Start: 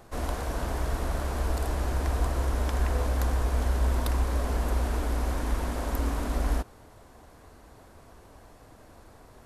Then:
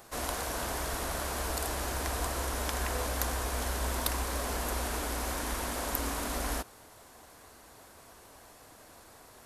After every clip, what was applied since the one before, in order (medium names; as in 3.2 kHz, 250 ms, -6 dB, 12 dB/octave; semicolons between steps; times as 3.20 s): tilt EQ +2.5 dB/octave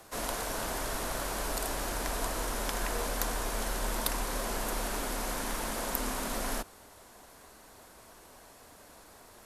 frequency shift -24 Hz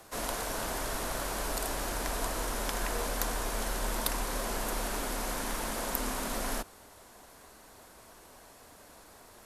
no audible change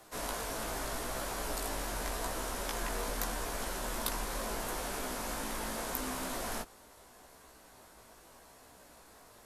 chorus 0.81 Hz, delay 15.5 ms, depth 3 ms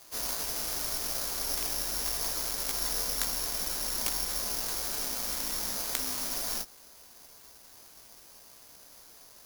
careless resampling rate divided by 8×, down none, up zero stuff; trim -5 dB